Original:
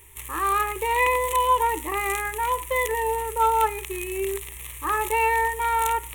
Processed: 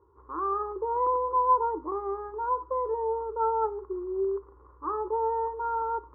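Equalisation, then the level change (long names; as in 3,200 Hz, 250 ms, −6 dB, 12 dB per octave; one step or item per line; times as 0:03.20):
high-pass filter 66 Hz
Chebyshev low-pass with heavy ripple 1,500 Hz, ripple 9 dB
parametric band 120 Hz −11.5 dB 0.35 octaves
0.0 dB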